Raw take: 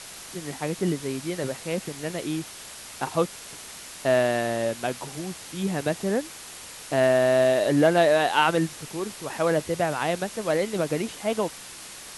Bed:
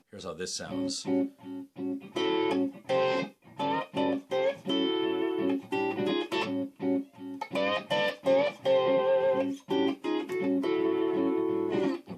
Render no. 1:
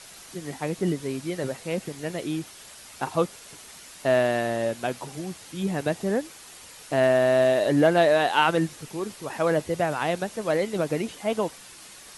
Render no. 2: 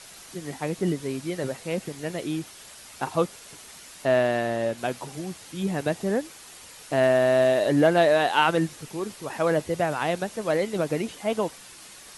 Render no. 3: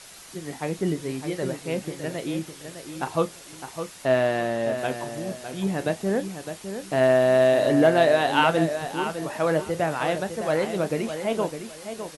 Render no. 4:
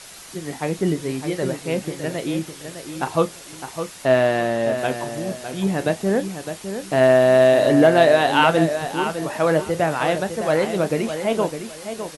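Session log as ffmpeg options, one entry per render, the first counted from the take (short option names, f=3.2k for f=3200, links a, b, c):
-af "afftdn=nr=6:nf=-42"
-filter_complex "[0:a]asettb=1/sr,asplit=3[a][b][c];[a]atrim=end=4.054[d];[b]atrim=start=4.05:end=4.78,asetpts=PTS-STARTPTS,afade=t=in:d=0.004:c=qsin,afade=t=out:st=0.726:d=0.004:c=qsin,highshelf=f=6.6k:g=-6[e];[c]atrim=start=4.776[f];[d][e]acrossfade=d=0.004:c1=hsin:c2=qsin[g];[g][f]acrossfade=d=0.004:c1=qsin:c2=hsin"
-filter_complex "[0:a]asplit=2[a][b];[b]adelay=31,volume=-12.5dB[c];[a][c]amix=inputs=2:normalize=0,asplit=2[d][e];[e]adelay=608,lowpass=f=3.8k:p=1,volume=-9dB,asplit=2[f][g];[g]adelay=608,lowpass=f=3.8k:p=1,volume=0.25,asplit=2[h][i];[i]adelay=608,lowpass=f=3.8k:p=1,volume=0.25[j];[d][f][h][j]amix=inputs=4:normalize=0"
-af "volume=4.5dB,alimiter=limit=-3dB:level=0:latency=1"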